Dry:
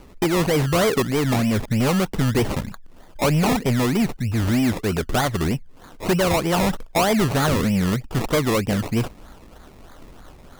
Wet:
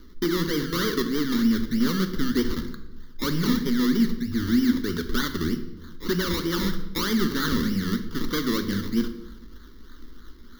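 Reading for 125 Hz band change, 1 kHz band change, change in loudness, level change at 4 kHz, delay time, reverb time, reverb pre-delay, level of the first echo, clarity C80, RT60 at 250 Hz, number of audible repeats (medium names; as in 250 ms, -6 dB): -9.5 dB, -10.0 dB, -4.0 dB, -1.5 dB, no echo, 1.0 s, 3 ms, no echo, 12.5 dB, 1.2 s, no echo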